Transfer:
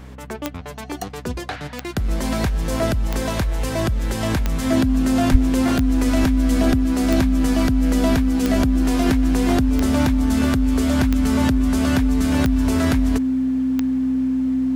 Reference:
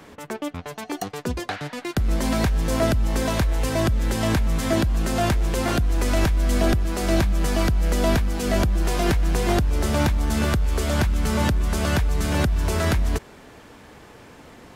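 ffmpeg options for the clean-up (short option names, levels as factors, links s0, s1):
-filter_complex "[0:a]adeclick=t=4,bandreject=f=64.4:t=h:w=4,bandreject=f=128.8:t=h:w=4,bandreject=f=193.2:t=h:w=4,bandreject=f=257.6:t=h:w=4,bandreject=f=260:w=30,asplit=3[s0][s1][s2];[s0]afade=t=out:st=5.31:d=0.02[s3];[s1]highpass=f=140:w=0.5412,highpass=f=140:w=1.3066,afade=t=in:st=5.31:d=0.02,afade=t=out:st=5.43:d=0.02[s4];[s2]afade=t=in:st=5.43:d=0.02[s5];[s3][s4][s5]amix=inputs=3:normalize=0"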